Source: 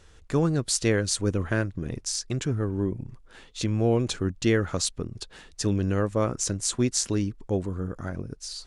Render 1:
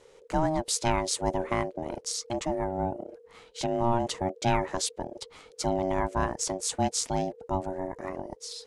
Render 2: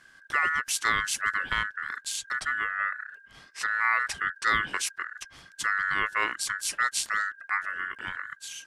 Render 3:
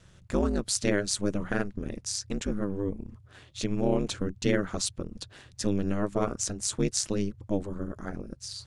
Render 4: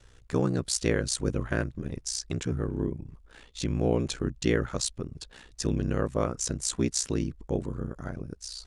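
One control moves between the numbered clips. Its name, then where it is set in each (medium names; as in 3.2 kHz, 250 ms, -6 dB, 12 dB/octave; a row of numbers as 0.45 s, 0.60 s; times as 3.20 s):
ring modulator, frequency: 470 Hz, 1.6 kHz, 100 Hz, 31 Hz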